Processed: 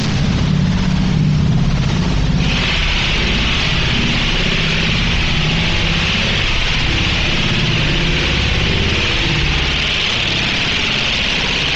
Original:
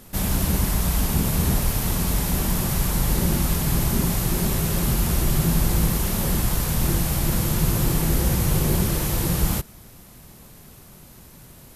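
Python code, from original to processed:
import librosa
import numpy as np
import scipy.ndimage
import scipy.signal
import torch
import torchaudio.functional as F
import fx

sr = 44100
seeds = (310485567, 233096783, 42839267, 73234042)

y = fx.delta_mod(x, sr, bps=32000, step_db=-21.0)
y = fx.dereverb_blind(y, sr, rt60_s=1.9)
y = fx.peak_eq(y, sr, hz=fx.steps((0.0, 150.0), (2.4, 2700.0)), db=12.0, octaves=1.2)
y = fx.rev_spring(y, sr, rt60_s=1.6, pass_ms=(60,), chirp_ms=70, drr_db=-2.5)
y = fx.env_flatten(y, sr, amount_pct=70)
y = y * librosa.db_to_amplitude(-3.5)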